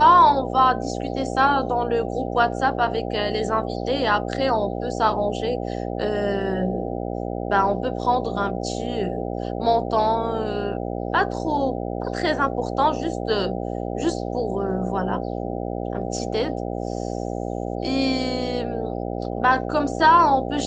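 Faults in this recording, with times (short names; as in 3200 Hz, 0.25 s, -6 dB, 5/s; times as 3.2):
buzz 60 Hz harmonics 13 -28 dBFS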